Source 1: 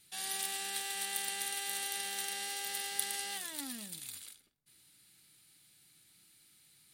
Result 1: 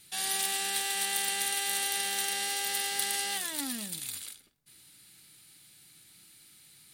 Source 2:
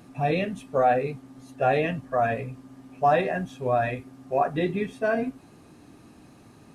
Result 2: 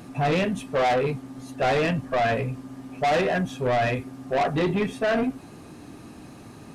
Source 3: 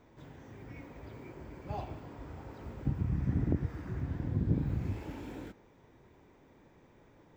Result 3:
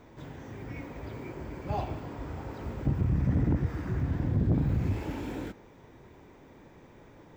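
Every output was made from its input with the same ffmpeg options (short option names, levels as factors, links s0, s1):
-af "asoftclip=type=tanh:threshold=0.0473,volume=2.37"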